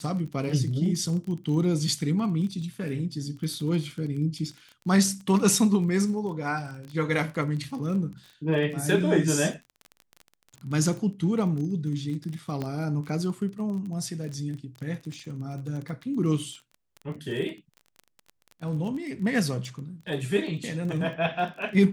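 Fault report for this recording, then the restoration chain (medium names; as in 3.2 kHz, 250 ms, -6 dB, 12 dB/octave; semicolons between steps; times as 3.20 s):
crackle 24 per s -34 dBFS
12.62 s: pop -19 dBFS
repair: de-click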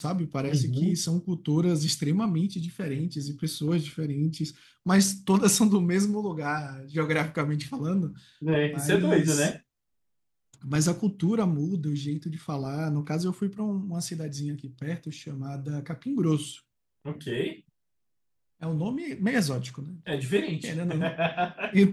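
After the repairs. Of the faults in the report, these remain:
nothing left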